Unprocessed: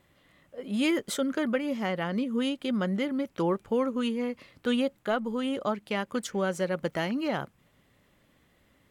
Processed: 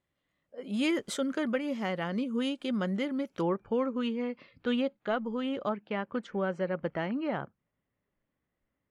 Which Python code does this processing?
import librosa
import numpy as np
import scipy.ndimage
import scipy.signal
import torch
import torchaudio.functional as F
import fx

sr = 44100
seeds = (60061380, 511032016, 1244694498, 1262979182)

y = fx.lowpass(x, sr, hz=fx.steps((0.0, 9500.0), (3.41, 3900.0), (5.69, 2200.0)), slope=12)
y = fx.noise_reduce_blind(y, sr, reduce_db=16)
y = y * librosa.db_to_amplitude(-2.5)